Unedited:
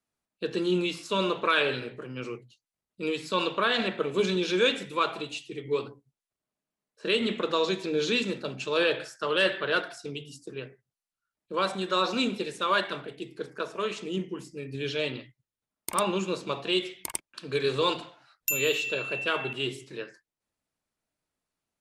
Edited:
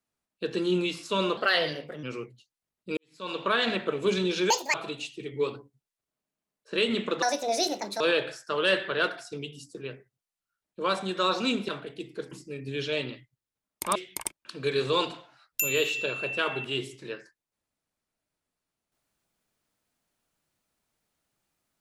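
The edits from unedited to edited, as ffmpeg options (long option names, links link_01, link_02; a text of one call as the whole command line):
ffmpeg -i in.wav -filter_complex "[0:a]asplit=11[link_01][link_02][link_03][link_04][link_05][link_06][link_07][link_08][link_09][link_10][link_11];[link_01]atrim=end=1.374[link_12];[link_02]atrim=start=1.37:end=2.15,asetpts=PTS-STARTPTS,asetrate=52038,aresample=44100[link_13];[link_03]atrim=start=2.146:end=3.09,asetpts=PTS-STARTPTS,afade=type=out:start_time=0.94:duration=0.004:curve=hsin[link_14];[link_04]atrim=start=3.09:end=4.624,asetpts=PTS-STARTPTS,afade=type=in:duration=0.49:curve=qua[link_15];[link_05]atrim=start=4.62:end=5.06,asetpts=PTS-STARTPTS,asetrate=80703,aresample=44100,atrim=end_sample=10603,asetpts=PTS-STARTPTS[link_16];[link_06]atrim=start=5.056:end=7.544[link_17];[link_07]atrim=start=7.54:end=8.73,asetpts=PTS-STARTPTS,asetrate=67032,aresample=44100[link_18];[link_08]atrim=start=8.726:end=12.412[link_19];[link_09]atrim=start=12.898:end=13.532[link_20];[link_10]atrim=start=14.378:end=16.022[link_21];[link_11]atrim=start=16.838[link_22];[link_12][link_13]acrossfade=duration=0.004:curve1=hsin:curve2=hsin[link_23];[link_14][link_15]concat=n=2:v=0:a=1[link_24];[link_23][link_24]acrossfade=duration=0.004:curve1=hsin:curve2=hsin[link_25];[link_25][link_16]acrossfade=duration=0.004:curve1=hsin:curve2=hsin[link_26];[link_26][link_17]acrossfade=duration=0.004:curve1=hsin:curve2=hsin[link_27];[link_27][link_18]acrossfade=duration=0.004:curve1=hsin:curve2=hsin[link_28];[link_28][link_19]acrossfade=duration=0.004:curve1=hsin:curve2=hsin[link_29];[link_29][link_20]acrossfade=duration=0.004:curve1=hsin:curve2=hsin[link_30];[link_30][link_21]acrossfade=duration=0.004:curve1=hsin:curve2=hsin[link_31];[link_31][link_22]acrossfade=duration=0.004:curve1=hsin:curve2=hsin" out.wav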